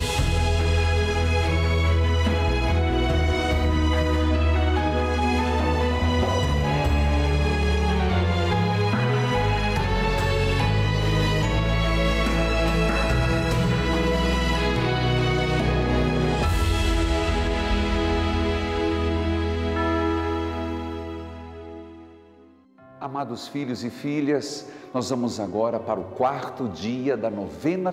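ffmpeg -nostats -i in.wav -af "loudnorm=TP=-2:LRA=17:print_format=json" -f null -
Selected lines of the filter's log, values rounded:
"input_i" : "-23.5",
"input_tp" : "-12.2",
"input_lra" : "5.2",
"input_thresh" : "-33.8",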